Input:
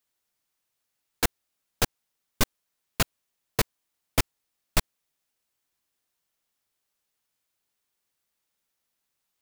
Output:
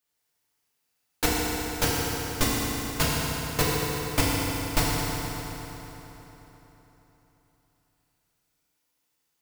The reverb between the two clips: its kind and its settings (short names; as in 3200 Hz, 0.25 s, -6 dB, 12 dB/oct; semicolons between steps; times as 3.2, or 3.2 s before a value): FDN reverb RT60 3.9 s, high-frequency decay 0.75×, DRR -7 dB; gain -3 dB